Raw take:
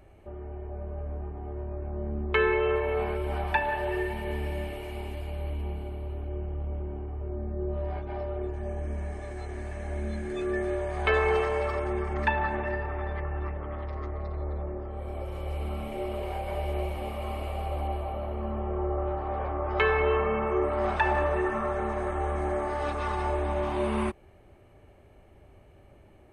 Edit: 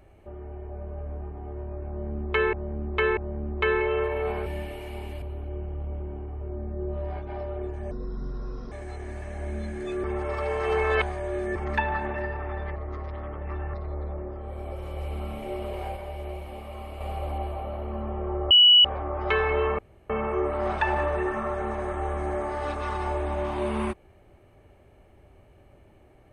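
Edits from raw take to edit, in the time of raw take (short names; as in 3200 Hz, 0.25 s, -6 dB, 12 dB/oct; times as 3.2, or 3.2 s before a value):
1.89–2.53 loop, 3 plays
3.18–4.48 cut
5.24–6.02 cut
8.71–9.21 speed 62%
10.53–12.05 reverse
13.25–14.23 reverse
16.46–17.5 gain -5 dB
19–19.34 bleep 2940 Hz -11.5 dBFS
20.28 insert room tone 0.31 s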